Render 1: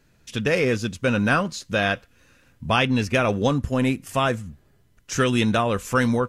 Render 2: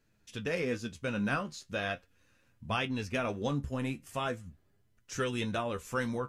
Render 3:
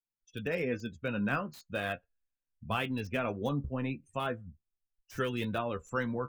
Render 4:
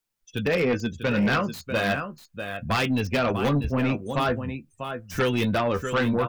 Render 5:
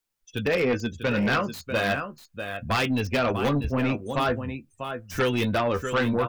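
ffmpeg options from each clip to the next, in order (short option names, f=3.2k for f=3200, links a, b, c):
-af "flanger=delay=8.8:depth=6:regen=49:speed=0.4:shape=triangular,volume=-8dB"
-filter_complex "[0:a]afftdn=nr=34:nf=-46,acrossover=split=210|4000[a][b][c];[c]aeval=exprs='(mod(266*val(0)+1,2)-1)/266':c=same[d];[a][b][d]amix=inputs=3:normalize=0"
-af "aecho=1:1:644:0.299,aeval=exprs='0.133*sin(PI/2*2.51*val(0)/0.133)':c=same"
-af "equalizer=f=170:t=o:w=0.54:g=-5"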